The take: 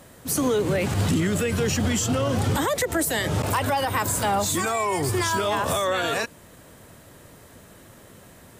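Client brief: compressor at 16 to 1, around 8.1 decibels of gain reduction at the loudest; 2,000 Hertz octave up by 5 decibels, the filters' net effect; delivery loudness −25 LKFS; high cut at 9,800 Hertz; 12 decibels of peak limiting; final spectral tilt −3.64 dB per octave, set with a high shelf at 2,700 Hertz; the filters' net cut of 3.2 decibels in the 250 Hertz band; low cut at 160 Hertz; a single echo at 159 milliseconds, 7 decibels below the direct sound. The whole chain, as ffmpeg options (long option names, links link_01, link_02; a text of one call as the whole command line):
ffmpeg -i in.wav -af "highpass=160,lowpass=9800,equalizer=frequency=250:width_type=o:gain=-3,equalizer=frequency=2000:width_type=o:gain=8,highshelf=frequency=2700:gain=-4.5,acompressor=threshold=-26dB:ratio=16,alimiter=level_in=5dB:limit=-24dB:level=0:latency=1,volume=-5dB,aecho=1:1:159:0.447,volume=11dB" out.wav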